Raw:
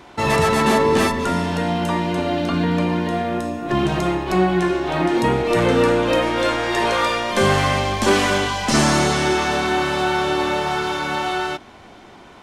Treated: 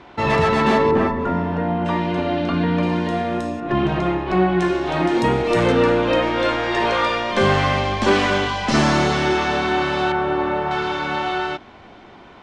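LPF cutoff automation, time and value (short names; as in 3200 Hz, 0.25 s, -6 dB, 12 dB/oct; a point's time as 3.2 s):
3800 Hz
from 0.91 s 1500 Hz
from 1.86 s 3600 Hz
from 2.83 s 7200 Hz
from 3.6 s 3000 Hz
from 4.6 s 7600 Hz
from 5.72 s 4400 Hz
from 10.12 s 1800 Hz
from 10.71 s 4000 Hz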